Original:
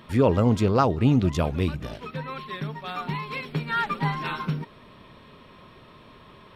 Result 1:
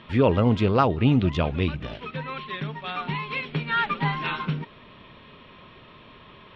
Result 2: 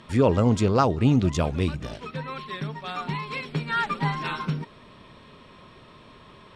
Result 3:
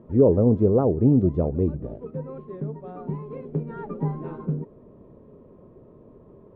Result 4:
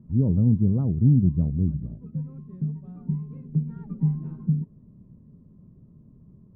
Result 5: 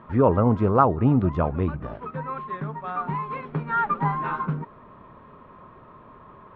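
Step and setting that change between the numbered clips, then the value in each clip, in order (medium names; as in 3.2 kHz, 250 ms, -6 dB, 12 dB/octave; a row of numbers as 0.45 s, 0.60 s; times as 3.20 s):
resonant low-pass, frequency: 3.1 kHz, 8 kHz, 460 Hz, 180 Hz, 1.2 kHz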